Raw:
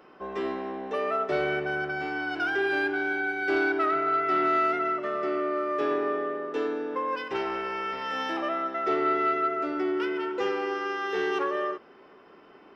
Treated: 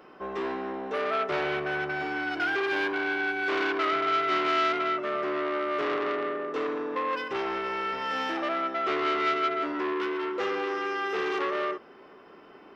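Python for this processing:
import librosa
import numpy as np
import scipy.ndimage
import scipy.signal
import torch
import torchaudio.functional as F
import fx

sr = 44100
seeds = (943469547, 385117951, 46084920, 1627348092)

y = fx.transformer_sat(x, sr, knee_hz=1500.0)
y = y * 10.0 ** (2.0 / 20.0)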